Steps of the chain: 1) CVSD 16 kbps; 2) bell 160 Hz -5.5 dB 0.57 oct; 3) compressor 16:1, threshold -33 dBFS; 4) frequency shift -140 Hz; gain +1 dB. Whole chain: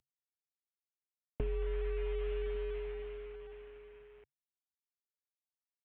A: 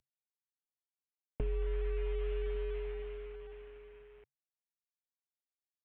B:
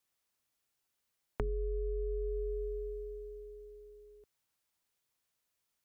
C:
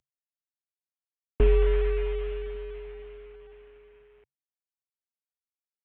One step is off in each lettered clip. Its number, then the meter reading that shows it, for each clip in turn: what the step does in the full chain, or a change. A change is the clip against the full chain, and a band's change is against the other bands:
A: 2, 125 Hz band +3.0 dB; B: 1, 1 kHz band -2.0 dB; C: 3, mean gain reduction 4.0 dB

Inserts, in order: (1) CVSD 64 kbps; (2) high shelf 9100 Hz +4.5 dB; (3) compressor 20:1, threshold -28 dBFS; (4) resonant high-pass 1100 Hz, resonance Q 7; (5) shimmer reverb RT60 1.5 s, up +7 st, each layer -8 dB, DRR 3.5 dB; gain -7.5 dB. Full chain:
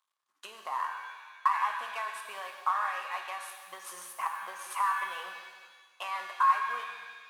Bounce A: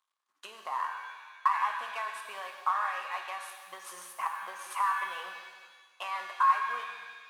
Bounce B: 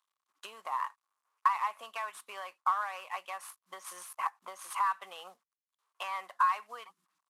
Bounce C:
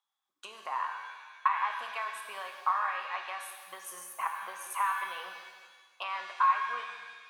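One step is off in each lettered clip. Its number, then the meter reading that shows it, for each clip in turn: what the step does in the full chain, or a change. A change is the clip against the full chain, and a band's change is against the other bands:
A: 2, 8 kHz band -2.0 dB; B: 5, crest factor change +2.5 dB; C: 1, crest factor change +1.5 dB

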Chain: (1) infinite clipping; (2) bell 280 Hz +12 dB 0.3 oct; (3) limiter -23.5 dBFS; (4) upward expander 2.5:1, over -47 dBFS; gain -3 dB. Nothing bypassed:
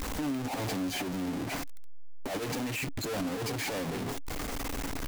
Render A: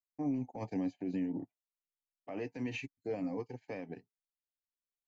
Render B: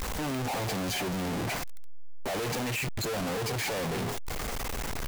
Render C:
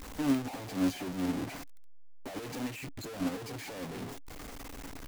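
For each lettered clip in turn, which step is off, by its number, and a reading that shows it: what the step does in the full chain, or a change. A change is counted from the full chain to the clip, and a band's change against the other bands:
1, crest factor change +6.5 dB; 2, 250 Hz band -4.5 dB; 3, crest factor change +9.5 dB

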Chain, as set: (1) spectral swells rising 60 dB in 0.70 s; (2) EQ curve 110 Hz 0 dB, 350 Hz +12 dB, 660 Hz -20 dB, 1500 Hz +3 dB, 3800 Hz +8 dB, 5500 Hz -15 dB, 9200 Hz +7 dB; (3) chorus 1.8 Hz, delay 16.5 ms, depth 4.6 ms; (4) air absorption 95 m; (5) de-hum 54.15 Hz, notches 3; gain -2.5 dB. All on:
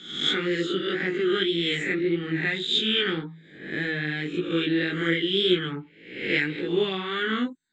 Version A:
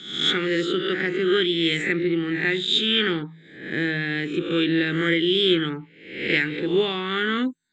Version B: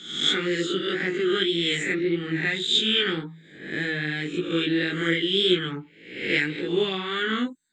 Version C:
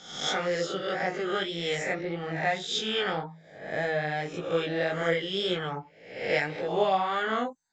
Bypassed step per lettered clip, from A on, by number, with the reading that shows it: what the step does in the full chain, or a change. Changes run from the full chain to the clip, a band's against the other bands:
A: 3, loudness change +3.0 LU; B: 4, 4 kHz band +2.0 dB; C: 2, loudness change -4.0 LU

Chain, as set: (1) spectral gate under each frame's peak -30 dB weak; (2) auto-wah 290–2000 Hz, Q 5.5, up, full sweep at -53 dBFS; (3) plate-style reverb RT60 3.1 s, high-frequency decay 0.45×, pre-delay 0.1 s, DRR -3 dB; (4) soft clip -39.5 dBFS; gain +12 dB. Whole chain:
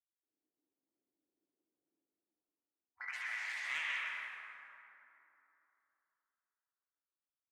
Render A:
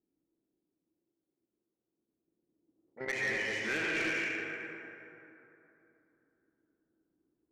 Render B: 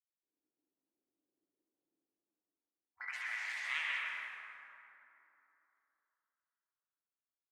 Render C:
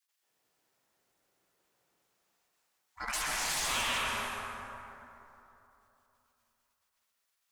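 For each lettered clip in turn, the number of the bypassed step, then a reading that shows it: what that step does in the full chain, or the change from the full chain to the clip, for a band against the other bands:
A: 1, 500 Hz band +22.5 dB; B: 4, distortion -22 dB; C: 2, 2 kHz band -15.5 dB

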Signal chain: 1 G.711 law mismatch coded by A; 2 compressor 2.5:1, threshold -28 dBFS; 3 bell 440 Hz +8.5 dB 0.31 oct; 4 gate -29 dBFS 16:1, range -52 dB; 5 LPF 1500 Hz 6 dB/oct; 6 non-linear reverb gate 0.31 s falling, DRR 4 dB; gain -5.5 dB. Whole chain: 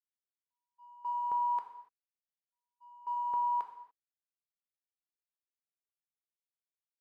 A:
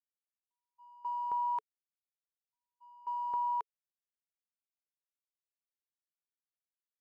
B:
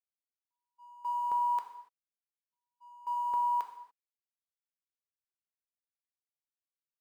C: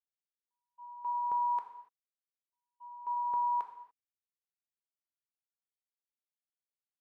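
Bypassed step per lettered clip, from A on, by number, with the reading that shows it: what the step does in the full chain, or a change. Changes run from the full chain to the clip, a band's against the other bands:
6, momentary loudness spread change -3 LU; 5, loudness change +1.5 LU; 1, distortion -28 dB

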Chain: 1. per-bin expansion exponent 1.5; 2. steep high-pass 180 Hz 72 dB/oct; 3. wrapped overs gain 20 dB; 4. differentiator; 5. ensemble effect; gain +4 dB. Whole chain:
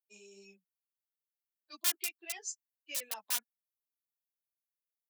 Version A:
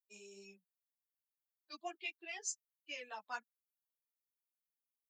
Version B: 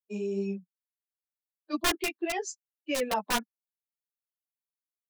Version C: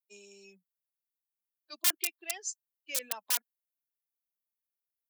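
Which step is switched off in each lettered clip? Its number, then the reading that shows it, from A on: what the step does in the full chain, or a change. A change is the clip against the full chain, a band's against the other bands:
3, crest factor change -6.5 dB; 4, 250 Hz band +17.5 dB; 5, 500 Hz band +2.0 dB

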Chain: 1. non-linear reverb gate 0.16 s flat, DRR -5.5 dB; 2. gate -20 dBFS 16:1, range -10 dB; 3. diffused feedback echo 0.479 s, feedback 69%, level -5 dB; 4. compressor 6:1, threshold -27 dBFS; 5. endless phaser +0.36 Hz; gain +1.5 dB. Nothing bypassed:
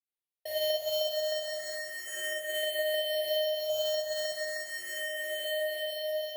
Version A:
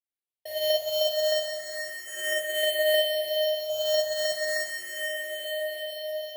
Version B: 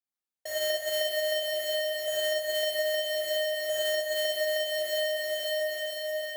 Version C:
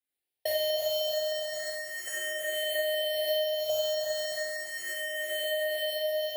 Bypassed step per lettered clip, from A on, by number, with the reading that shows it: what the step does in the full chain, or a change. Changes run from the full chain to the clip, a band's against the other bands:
4, mean gain reduction 3.5 dB; 5, momentary loudness spread change -3 LU; 2, loudness change +1.5 LU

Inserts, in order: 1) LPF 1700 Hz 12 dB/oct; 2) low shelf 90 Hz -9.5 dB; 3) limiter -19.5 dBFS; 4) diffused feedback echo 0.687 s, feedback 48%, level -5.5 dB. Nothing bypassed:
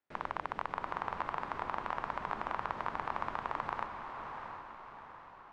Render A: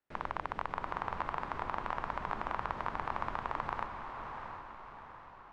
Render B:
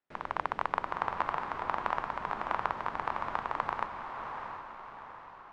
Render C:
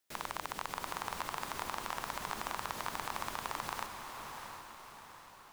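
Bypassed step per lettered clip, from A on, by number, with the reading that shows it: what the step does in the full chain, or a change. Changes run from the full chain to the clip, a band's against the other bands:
2, 125 Hz band +4.0 dB; 3, mean gain reduction 1.5 dB; 1, crest factor change +1.5 dB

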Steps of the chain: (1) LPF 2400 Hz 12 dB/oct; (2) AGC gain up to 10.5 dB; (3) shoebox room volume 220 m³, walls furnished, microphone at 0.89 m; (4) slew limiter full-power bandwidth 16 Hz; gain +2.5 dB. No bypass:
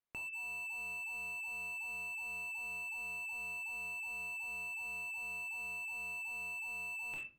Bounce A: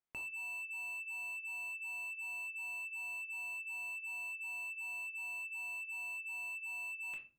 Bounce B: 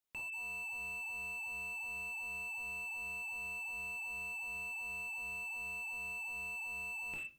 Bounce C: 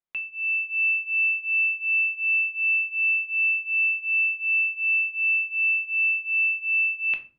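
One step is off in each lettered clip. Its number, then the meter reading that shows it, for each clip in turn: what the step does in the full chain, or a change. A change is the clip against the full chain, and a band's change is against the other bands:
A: 2, 500 Hz band -4.0 dB; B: 1, 250 Hz band +2.0 dB; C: 4, crest factor change -6.0 dB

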